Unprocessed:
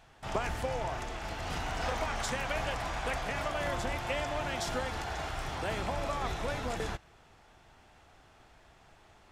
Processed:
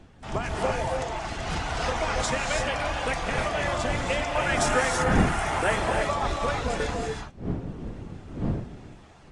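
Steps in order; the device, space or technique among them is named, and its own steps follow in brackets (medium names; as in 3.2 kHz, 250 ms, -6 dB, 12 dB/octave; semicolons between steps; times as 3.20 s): reverb removal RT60 1.5 s; 4.35–5.76 s: FFT filter 110 Hz 0 dB, 1.9 kHz +7 dB, 4.3 kHz -3 dB, 11 kHz +11 dB; gated-style reverb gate 360 ms rising, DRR 1 dB; smartphone video outdoors (wind noise 230 Hz -41 dBFS; level rider gain up to 7 dB; AAC 48 kbps 22.05 kHz)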